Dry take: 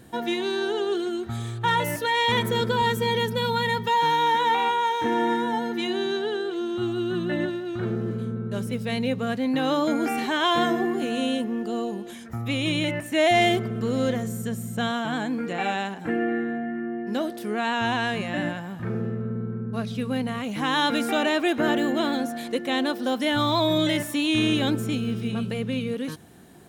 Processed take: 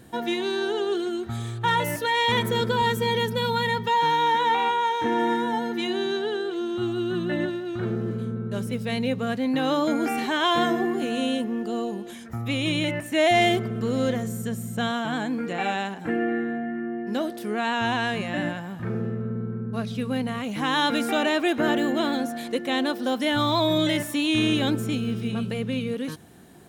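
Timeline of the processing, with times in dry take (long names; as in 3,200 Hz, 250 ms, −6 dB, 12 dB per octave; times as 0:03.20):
0:03.69–0:05.19: high-shelf EQ 8,800 Hz −6 dB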